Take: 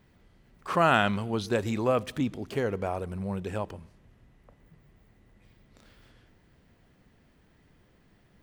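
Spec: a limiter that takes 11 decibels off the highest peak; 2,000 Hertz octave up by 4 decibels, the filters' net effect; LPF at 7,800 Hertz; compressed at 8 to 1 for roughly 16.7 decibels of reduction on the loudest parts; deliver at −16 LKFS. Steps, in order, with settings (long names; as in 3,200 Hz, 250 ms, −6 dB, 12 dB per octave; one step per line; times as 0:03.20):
low-pass filter 7,800 Hz
parametric band 2,000 Hz +6 dB
downward compressor 8 to 1, threshold −33 dBFS
level +27.5 dB
brickwall limiter −5.5 dBFS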